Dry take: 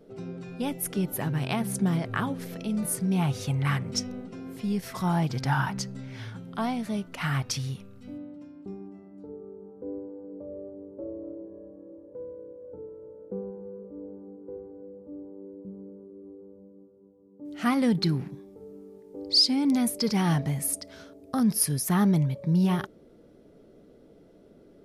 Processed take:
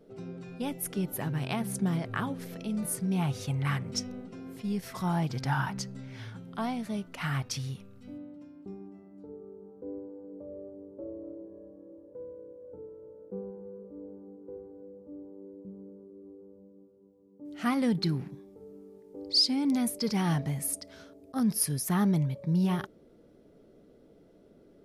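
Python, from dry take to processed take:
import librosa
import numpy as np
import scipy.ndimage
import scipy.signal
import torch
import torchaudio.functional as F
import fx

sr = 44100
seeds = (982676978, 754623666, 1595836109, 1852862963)

y = fx.attack_slew(x, sr, db_per_s=510.0)
y = y * 10.0 ** (-3.5 / 20.0)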